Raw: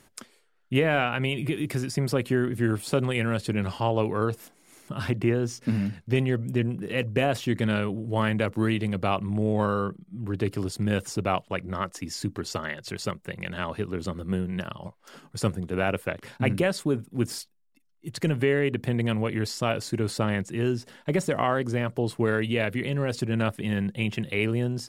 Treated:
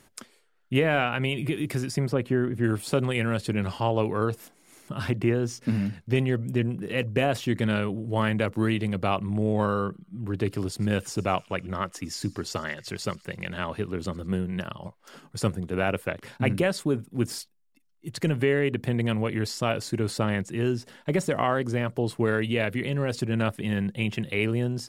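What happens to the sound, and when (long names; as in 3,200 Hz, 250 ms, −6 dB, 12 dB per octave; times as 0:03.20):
0:02.06–0:02.64: high-shelf EQ 2,900 Hz −11.5 dB
0:09.83–0:14.44: delay with a high-pass on its return 103 ms, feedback 63%, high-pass 2,900 Hz, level −20 dB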